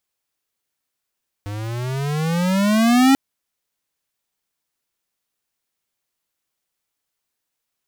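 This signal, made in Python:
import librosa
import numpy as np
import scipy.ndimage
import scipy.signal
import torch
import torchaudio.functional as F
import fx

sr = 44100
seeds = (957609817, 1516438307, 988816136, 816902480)

y = fx.riser_tone(sr, length_s=1.69, level_db=-12, wave='square', hz=100.0, rise_st=17.5, swell_db=16.5)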